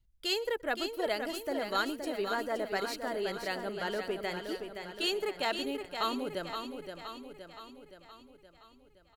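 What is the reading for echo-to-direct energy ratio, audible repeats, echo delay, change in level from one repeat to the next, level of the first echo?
-5.5 dB, 8, 0.123 s, no steady repeat, -23.5 dB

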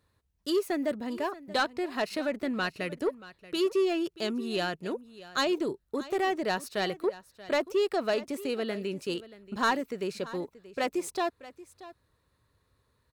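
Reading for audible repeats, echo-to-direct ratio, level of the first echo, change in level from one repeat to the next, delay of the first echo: 1, -17.5 dB, -17.5 dB, no steady repeat, 0.631 s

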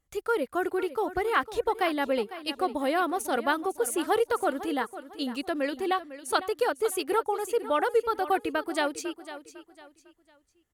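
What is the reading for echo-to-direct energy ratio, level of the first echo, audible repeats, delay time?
-13.5 dB, -14.0 dB, 3, 0.502 s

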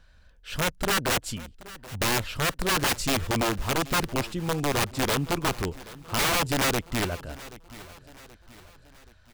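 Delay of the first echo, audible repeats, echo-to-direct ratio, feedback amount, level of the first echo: 0.778 s, 3, -17.5 dB, 47%, -18.5 dB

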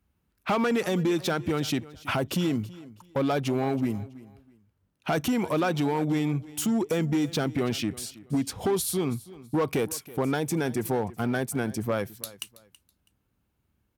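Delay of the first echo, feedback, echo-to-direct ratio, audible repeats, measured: 0.326 s, 25%, -19.0 dB, 2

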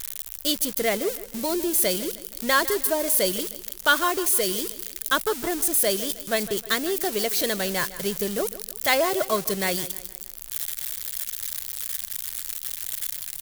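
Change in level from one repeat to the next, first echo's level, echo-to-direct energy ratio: -7.5 dB, -16.0 dB, -15.0 dB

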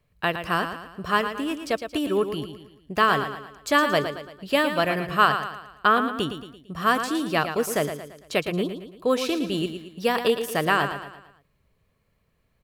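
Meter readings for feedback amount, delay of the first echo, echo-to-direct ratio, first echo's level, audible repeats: 45%, 0.113 s, -8.0 dB, -9.0 dB, 4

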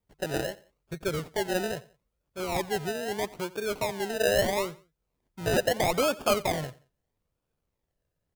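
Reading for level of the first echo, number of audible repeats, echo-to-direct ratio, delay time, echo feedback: -20.5 dB, 2, -20.0 dB, 88 ms, 32%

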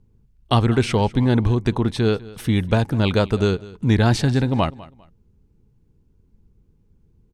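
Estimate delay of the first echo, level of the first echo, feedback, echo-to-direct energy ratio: 0.2 s, -20.0 dB, 26%, -19.5 dB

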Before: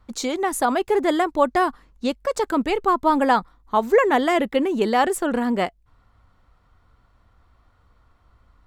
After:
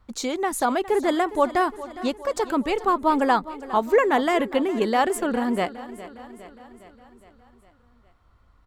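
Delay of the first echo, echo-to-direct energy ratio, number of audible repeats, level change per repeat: 0.41 s, -14.0 dB, 5, -4.5 dB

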